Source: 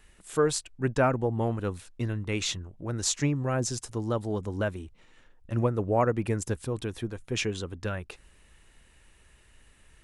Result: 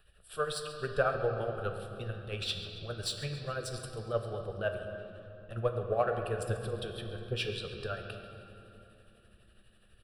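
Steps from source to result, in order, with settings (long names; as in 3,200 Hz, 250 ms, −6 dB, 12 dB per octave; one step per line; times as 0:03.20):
harmonic and percussive parts rebalanced percussive +9 dB
in parallel at −10 dB: soft clipping −19 dBFS, distortion −9 dB
on the sum: amplitude tremolo 12 Hz, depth 63%
phaser with its sweep stopped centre 1,400 Hz, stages 8
repeating echo 137 ms, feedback 49%, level −16.5 dB
on a send at −4 dB: convolution reverb RT60 3.3 s, pre-delay 7 ms
on the sum: level −9 dB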